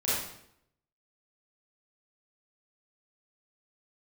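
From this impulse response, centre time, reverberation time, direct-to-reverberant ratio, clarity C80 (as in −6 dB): 74 ms, 0.75 s, −10.0 dB, 2.5 dB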